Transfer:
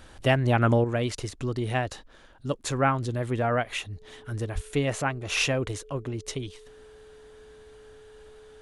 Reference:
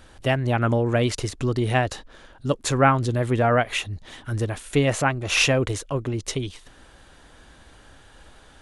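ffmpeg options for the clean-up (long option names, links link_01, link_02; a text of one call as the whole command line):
ffmpeg -i in.wav -filter_complex "[0:a]bandreject=frequency=430:width=30,asplit=3[link_01][link_02][link_03];[link_01]afade=type=out:start_time=4.54:duration=0.02[link_04];[link_02]highpass=frequency=140:width=0.5412,highpass=frequency=140:width=1.3066,afade=type=in:start_time=4.54:duration=0.02,afade=type=out:start_time=4.66:duration=0.02[link_05];[link_03]afade=type=in:start_time=4.66:duration=0.02[link_06];[link_04][link_05][link_06]amix=inputs=3:normalize=0,asetnsamples=nb_out_samples=441:pad=0,asendcmd='0.84 volume volume 6dB',volume=0dB" out.wav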